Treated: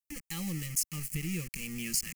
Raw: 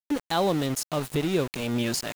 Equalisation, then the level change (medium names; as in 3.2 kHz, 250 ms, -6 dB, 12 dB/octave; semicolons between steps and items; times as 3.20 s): Butterworth band-stop 650 Hz, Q 0.56; static phaser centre 400 Hz, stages 6; static phaser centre 1 kHz, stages 6; +4.5 dB